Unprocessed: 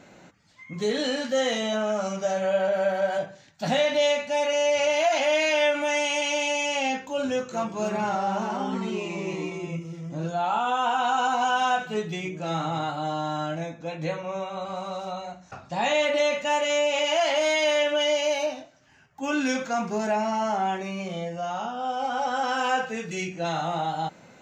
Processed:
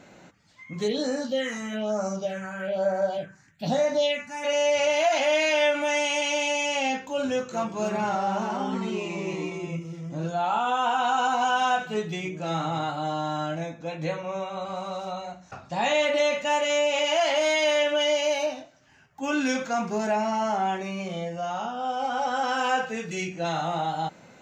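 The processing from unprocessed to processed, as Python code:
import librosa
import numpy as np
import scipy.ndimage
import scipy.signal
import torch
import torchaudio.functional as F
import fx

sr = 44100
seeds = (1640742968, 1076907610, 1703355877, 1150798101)

y = fx.phaser_stages(x, sr, stages=4, low_hz=550.0, high_hz=3200.0, hz=1.1, feedback_pct=20, at=(0.87, 4.43), fade=0.02)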